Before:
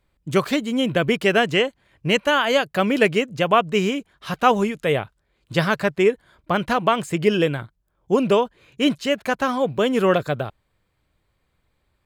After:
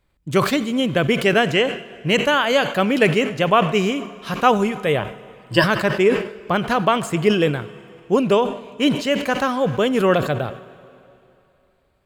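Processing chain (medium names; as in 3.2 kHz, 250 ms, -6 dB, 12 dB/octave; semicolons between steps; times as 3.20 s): 5.00–5.64 s: rippled EQ curve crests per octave 1.3, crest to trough 16 dB; on a send at -17 dB: reverberation RT60 2.9 s, pre-delay 45 ms; on the sum: decay stretcher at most 100 dB/s; trim +1 dB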